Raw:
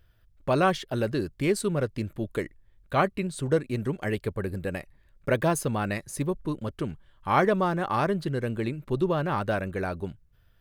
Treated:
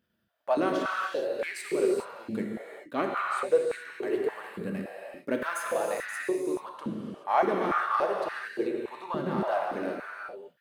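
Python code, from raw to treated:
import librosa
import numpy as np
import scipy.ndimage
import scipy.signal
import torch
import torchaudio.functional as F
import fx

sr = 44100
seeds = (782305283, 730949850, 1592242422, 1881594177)

y = np.where(x < 0.0, 10.0 ** (-3.0 / 20.0) * x, x)
y = fx.rev_gated(y, sr, seeds[0], gate_ms=450, shape='flat', drr_db=-1.5)
y = fx.filter_held_highpass(y, sr, hz=3.5, low_hz=210.0, high_hz=1700.0)
y = y * 10.0 ** (-8.0 / 20.0)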